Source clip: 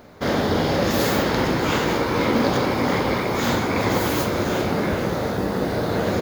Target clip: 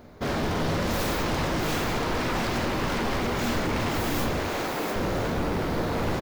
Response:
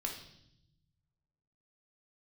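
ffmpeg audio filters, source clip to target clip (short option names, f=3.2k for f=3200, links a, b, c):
-filter_complex "[0:a]lowshelf=f=460:g=4.5,asplit=2[a][b];[b]aecho=0:1:686:0.596[c];[a][c]amix=inputs=2:normalize=0,aeval=exprs='0.141*(abs(mod(val(0)/0.141+3,4)-2)-1)':c=same,asettb=1/sr,asplit=3[d][e][f];[d]atrim=end=4.404[g];[e]atrim=start=4.4:end=4.96,asetpts=PTS-STARTPTS,afade=t=in:d=0.004:c=qsin,afade=t=out:st=0.556:d=0.004:c=qsin,highpass=290[h];[f]atrim=start=4.956[i];[g][h]acrossfade=d=0.004:c1=hsin:c2=qsin[j];[j][i]acrossfade=d=0.004:c1=qsin:c2=hsin,asplit=2[k][l];[1:a]atrim=start_sample=2205,lowshelf=f=160:g=11[m];[l][m]afir=irnorm=-1:irlink=0,volume=-9dB[n];[k][n]amix=inputs=2:normalize=0,volume=-8dB"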